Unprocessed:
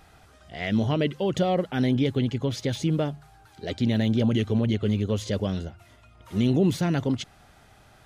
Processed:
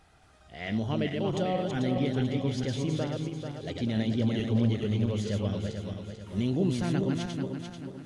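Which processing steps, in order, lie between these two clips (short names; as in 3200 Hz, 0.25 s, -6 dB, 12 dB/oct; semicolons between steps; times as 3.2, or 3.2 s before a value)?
regenerating reverse delay 0.22 s, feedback 65%, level -3.5 dB; gain -6.5 dB; AAC 64 kbps 24000 Hz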